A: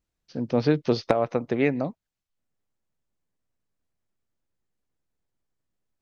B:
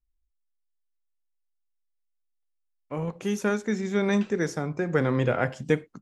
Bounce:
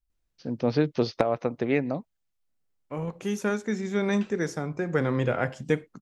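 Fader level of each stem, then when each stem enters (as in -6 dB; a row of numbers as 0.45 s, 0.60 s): -2.0 dB, -1.5 dB; 0.10 s, 0.00 s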